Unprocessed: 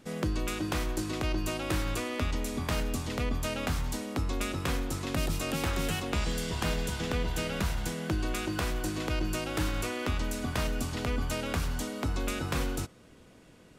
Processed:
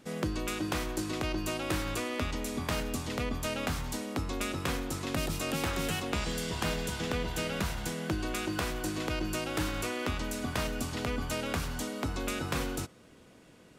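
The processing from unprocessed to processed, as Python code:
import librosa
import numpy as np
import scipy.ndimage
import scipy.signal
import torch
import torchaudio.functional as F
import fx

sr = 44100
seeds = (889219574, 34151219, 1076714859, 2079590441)

y = fx.low_shelf(x, sr, hz=74.0, db=-8.5)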